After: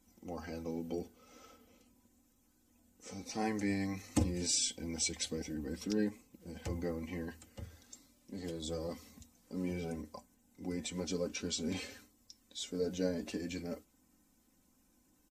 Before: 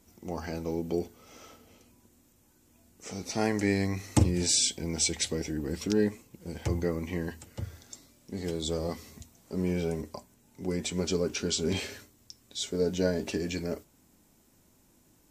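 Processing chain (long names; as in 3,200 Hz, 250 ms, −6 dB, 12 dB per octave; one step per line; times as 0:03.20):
spectral magnitudes quantised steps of 15 dB
comb filter 3.9 ms, depth 54%
level −8 dB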